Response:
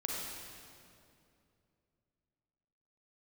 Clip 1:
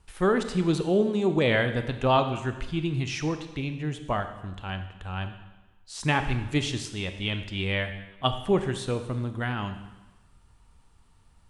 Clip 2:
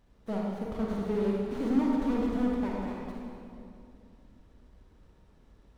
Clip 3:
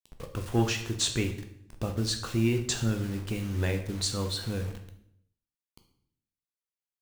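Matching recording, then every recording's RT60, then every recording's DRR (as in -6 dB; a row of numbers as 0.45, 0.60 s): 2; 1.1, 2.6, 0.70 s; 8.0, -3.0, 5.5 dB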